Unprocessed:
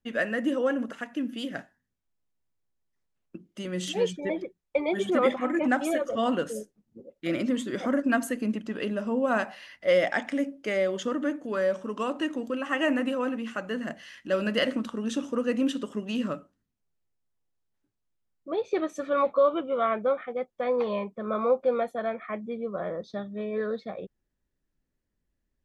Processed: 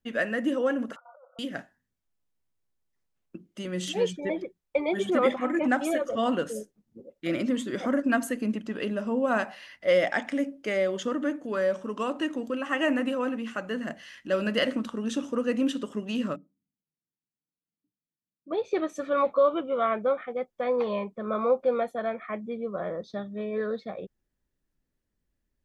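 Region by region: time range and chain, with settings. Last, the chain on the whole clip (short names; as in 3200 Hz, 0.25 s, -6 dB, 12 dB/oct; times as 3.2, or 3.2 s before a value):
0.96–1.39 brick-wall FIR band-pass 500–1500 Hz + negative-ratio compressor -54 dBFS
16.36–18.51 band-pass 220 Hz, Q 2.5 + comb 6.5 ms, depth 39%
whole clip: dry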